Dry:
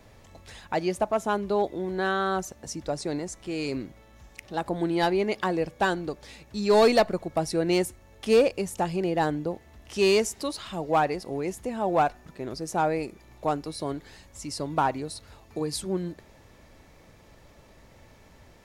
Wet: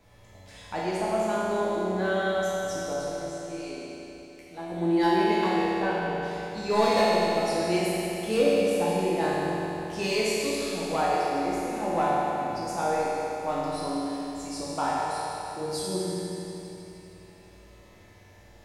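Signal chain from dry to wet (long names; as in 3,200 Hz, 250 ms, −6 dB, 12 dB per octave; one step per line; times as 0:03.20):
0:02.93–0:04.72: tuned comb filter 83 Hz, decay 0.23 s, harmonics all, mix 90%
0:05.68–0:06.12: low-pass filter 2,000 Hz 12 dB per octave
convolution reverb RT60 3.4 s, pre-delay 7 ms, DRR −8.5 dB
level −8 dB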